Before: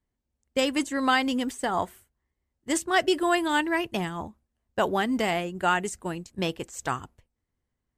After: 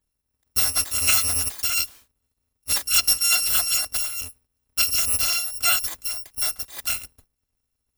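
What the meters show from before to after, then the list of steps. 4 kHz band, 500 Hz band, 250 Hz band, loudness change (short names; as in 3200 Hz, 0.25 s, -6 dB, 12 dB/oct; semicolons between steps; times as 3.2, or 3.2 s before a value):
+9.5 dB, -16.5 dB, -21.0 dB, +6.5 dB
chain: FFT order left unsorted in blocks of 256 samples; gain +3.5 dB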